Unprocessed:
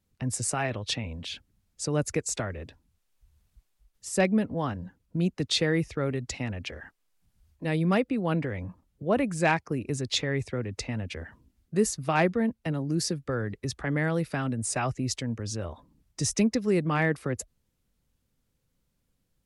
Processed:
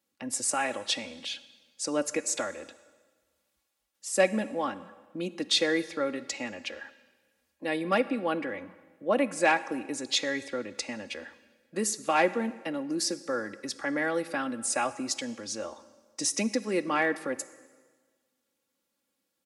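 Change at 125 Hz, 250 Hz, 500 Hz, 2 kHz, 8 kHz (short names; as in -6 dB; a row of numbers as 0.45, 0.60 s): -17.5, -4.0, 0.0, +1.5, +1.5 dB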